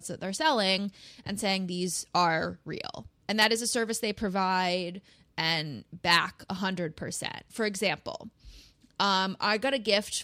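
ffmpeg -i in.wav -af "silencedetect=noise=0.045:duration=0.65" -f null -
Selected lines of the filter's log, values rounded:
silence_start: 8.15
silence_end: 9.00 | silence_duration: 0.85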